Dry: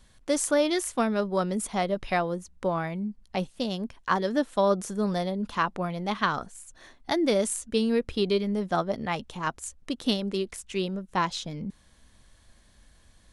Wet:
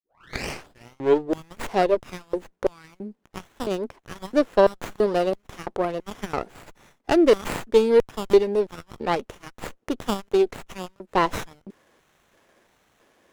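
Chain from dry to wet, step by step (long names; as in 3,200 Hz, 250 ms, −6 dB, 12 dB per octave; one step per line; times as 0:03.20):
turntable start at the beginning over 1.60 s
auto-filter high-pass square 1.5 Hz 390–4,700 Hz
windowed peak hold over 9 samples
level +4 dB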